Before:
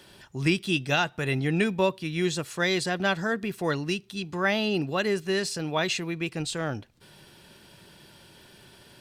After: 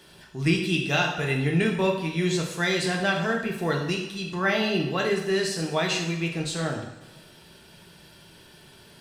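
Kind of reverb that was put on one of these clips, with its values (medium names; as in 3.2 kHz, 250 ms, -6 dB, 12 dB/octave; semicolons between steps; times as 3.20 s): two-slope reverb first 0.78 s, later 2 s, from -16 dB, DRR 0 dB; trim -1.5 dB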